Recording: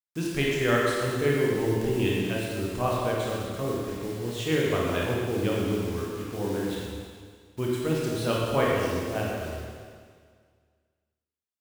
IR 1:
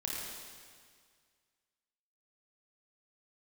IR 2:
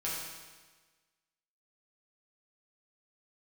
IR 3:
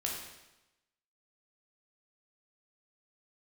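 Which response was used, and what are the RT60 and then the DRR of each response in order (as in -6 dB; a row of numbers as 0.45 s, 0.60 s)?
1; 1.9 s, 1.4 s, 1.0 s; -4.5 dB, -7.5 dB, -2.5 dB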